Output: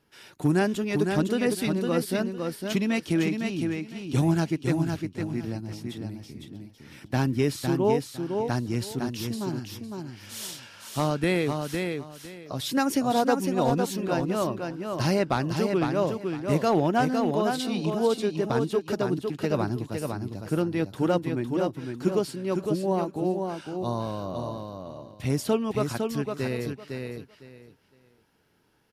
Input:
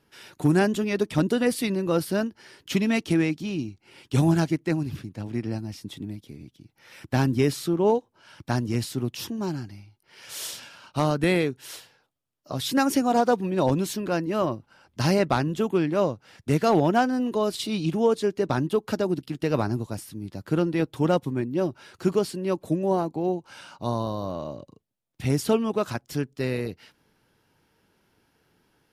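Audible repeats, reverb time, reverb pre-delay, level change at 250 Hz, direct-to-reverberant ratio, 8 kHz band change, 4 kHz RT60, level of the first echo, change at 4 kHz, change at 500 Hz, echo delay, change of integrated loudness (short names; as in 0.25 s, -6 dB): 3, none, none, -1.5 dB, none, -1.5 dB, none, -5.0 dB, -1.5 dB, -1.5 dB, 0.507 s, -2.0 dB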